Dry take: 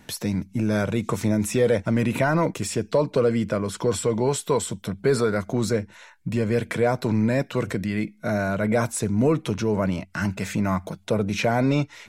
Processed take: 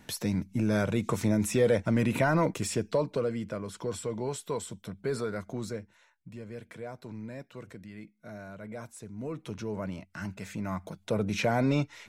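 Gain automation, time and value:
2.75 s -4 dB
3.36 s -11 dB
5.5 s -11 dB
6.32 s -19.5 dB
9.14 s -19.5 dB
9.55 s -12 dB
10.54 s -12 dB
11.25 s -5 dB

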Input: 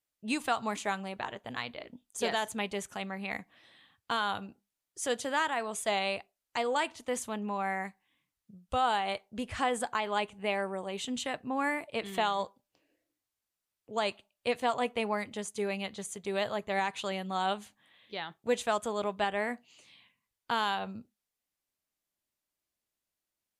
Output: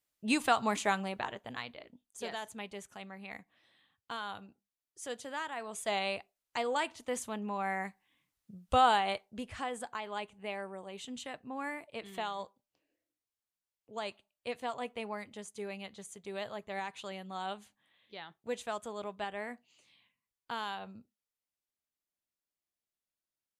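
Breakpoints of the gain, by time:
1.01 s +2.5 dB
2.03 s -9 dB
5.46 s -9 dB
5.96 s -2.5 dB
7.53 s -2.5 dB
8.8 s +4 dB
9.65 s -8 dB

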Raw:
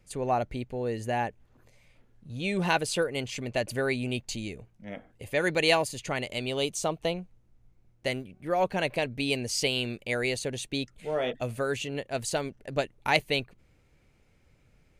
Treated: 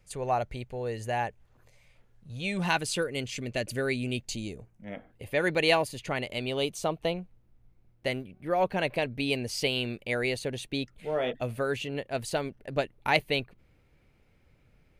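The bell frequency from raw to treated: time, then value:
bell -8 dB 0.89 oct
2.36 s 270 Hz
3.13 s 870 Hz
4.18 s 870 Hz
4.96 s 7100 Hz

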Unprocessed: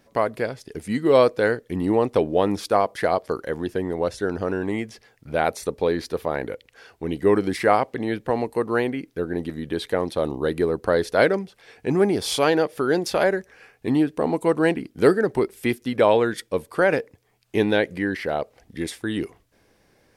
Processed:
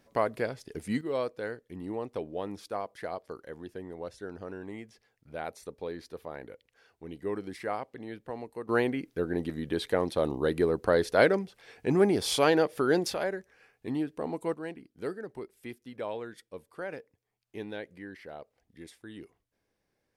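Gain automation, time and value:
-5.5 dB
from 1.01 s -15.5 dB
from 8.69 s -4 dB
from 13.14 s -11.5 dB
from 14.54 s -19 dB

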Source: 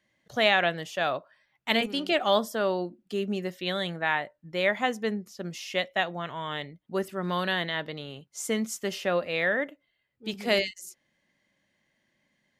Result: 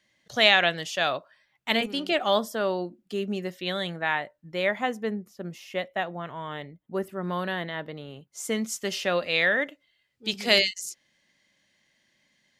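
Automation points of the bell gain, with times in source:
bell 5000 Hz 2.3 oct
1.02 s +8.5 dB
1.76 s +0.5 dB
4.48 s +0.5 dB
5.21 s -9 dB
8.01 s -9 dB
8.5 s +0.5 dB
9.3 s +10.5 dB

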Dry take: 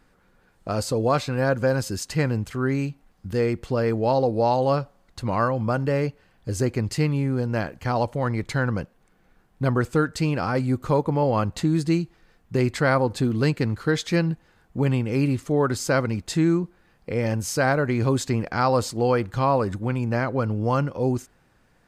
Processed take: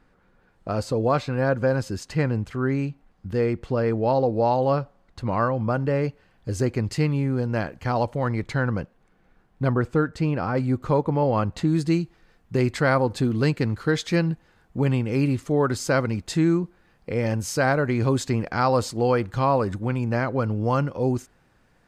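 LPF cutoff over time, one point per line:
LPF 6 dB/oct
2800 Hz
from 6.04 s 6100 Hz
from 8.45 s 3600 Hz
from 9.73 s 1700 Hz
from 10.57 s 3600 Hz
from 11.68 s 9300 Hz

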